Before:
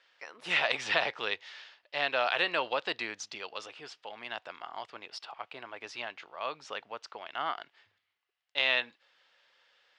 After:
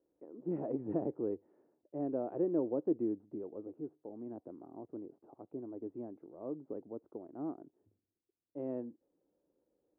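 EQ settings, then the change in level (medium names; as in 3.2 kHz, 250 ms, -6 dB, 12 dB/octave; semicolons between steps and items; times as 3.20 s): four-pole ladder low-pass 360 Hz, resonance 55%; +16.0 dB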